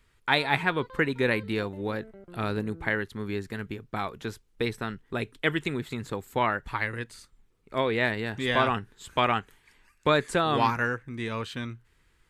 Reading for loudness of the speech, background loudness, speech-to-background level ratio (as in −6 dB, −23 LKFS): −28.5 LKFS, −48.5 LKFS, 20.0 dB